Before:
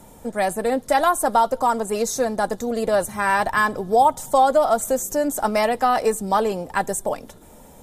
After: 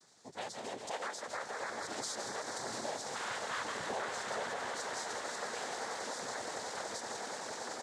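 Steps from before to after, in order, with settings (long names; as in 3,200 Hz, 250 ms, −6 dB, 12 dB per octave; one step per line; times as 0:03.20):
source passing by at 0:03.29, 6 m/s, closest 5.4 metres
noise gate with hold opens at −53 dBFS
spectral tilt +4 dB per octave
echo that builds up and dies away 94 ms, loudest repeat 8, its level −13 dB
soft clipping −18 dBFS, distortion −11 dB
single-tap delay 159 ms −7.5 dB
downward compressor, threshold −30 dBFS, peak gain reduction 10.5 dB
cochlear-implant simulation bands 6
low-shelf EQ 140 Hz +4.5 dB
level −6.5 dB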